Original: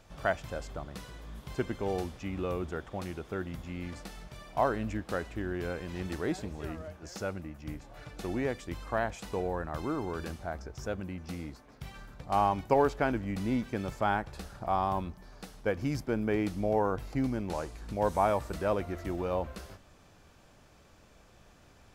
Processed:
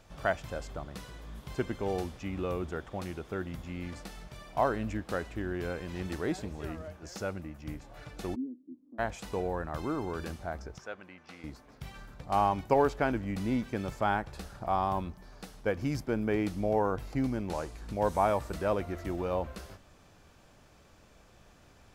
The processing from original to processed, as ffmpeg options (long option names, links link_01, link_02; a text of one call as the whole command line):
ffmpeg -i in.wav -filter_complex "[0:a]asplit=3[link_01][link_02][link_03];[link_01]afade=type=out:start_time=8.34:duration=0.02[link_04];[link_02]asuperpass=centerf=270:order=4:qfactor=4.2,afade=type=in:start_time=8.34:duration=0.02,afade=type=out:start_time=8.98:duration=0.02[link_05];[link_03]afade=type=in:start_time=8.98:duration=0.02[link_06];[link_04][link_05][link_06]amix=inputs=3:normalize=0,asettb=1/sr,asplit=3[link_07][link_08][link_09];[link_07]atrim=end=10.784[link_10];[link_08]atrim=start=10.78:end=11.44,asetpts=PTS-STARTPTS,afade=type=in:duration=0.004:curve=qsin,afade=type=out:start_time=0.656:duration=0.004:curve=qsin,bandpass=frequency=1700:width_type=q:width=0.67[link_11];[link_09]atrim=start=11.436[link_12];[link_10][link_11]acrossfade=duration=0.004:curve1=hsin:curve2=qsin[link_13];[link_13][link_12]acrossfade=duration=0.004:curve1=qsin:curve2=hsin" out.wav